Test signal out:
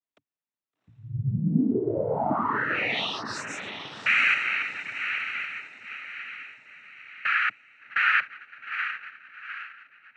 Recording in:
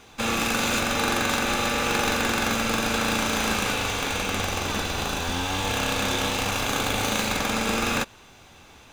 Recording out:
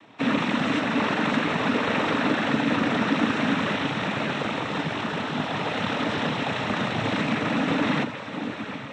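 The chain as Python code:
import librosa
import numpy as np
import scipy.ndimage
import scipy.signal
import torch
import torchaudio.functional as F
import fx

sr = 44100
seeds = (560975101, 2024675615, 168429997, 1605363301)

y = scipy.signal.savgol_filter(x, 25, 4, mode='constant')
y = fx.peak_eq(y, sr, hz=220.0, db=6.5, octaves=0.43)
y = fx.echo_diffused(y, sr, ms=761, feedback_pct=42, wet_db=-8.5)
y = fx.noise_vocoder(y, sr, seeds[0], bands=12)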